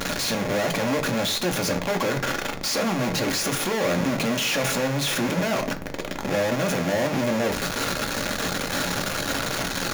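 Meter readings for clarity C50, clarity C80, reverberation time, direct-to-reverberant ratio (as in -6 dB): 15.5 dB, 20.0 dB, 0.45 s, 4.5 dB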